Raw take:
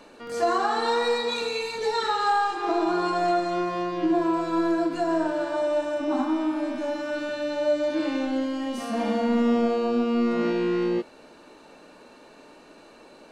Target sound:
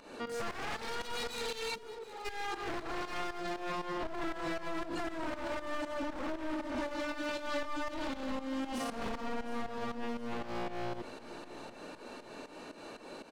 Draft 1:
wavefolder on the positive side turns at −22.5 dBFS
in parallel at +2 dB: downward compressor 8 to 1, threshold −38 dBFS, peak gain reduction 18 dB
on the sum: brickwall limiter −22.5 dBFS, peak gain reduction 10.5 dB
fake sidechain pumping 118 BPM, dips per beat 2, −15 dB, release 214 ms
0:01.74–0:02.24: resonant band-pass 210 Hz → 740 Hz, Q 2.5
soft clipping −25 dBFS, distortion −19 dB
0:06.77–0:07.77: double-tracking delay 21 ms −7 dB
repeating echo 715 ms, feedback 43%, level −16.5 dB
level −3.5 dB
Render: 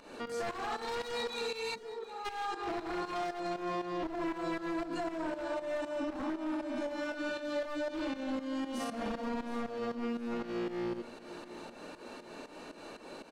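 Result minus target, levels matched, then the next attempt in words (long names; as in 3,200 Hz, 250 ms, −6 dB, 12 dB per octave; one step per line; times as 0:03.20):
downward compressor: peak gain reduction +9 dB; wavefolder on the positive side: distortion −11 dB
wavefolder on the positive side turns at −30 dBFS
in parallel at +2 dB: downward compressor 8 to 1, threshold −28 dBFS, peak gain reduction 9.5 dB
on the sum: brickwall limiter −22.5 dBFS, peak gain reduction 13 dB
fake sidechain pumping 118 BPM, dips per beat 2, −15 dB, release 214 ms
0:01.74–0:02.24: resonant band-pass 210 Hz → 740 Hz, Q 2.5
soft clipping −25 dBFS, distortion −18 dB
0:06.77–0:07.77: double-tracking delay 21 ms −7 dB
repeating echo 715 ms, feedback 43%, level −16.5 dB
level −3.5 dB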